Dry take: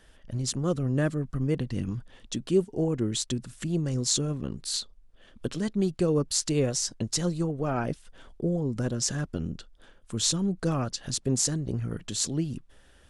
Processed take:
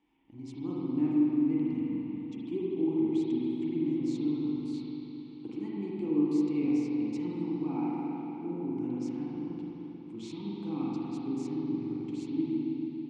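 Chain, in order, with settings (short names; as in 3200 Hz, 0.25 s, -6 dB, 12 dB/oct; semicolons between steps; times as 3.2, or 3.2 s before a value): vowel filter u; spring tank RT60 3.8 s, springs 40/44 ms, chirp 40 ms, DRR -6.5 dB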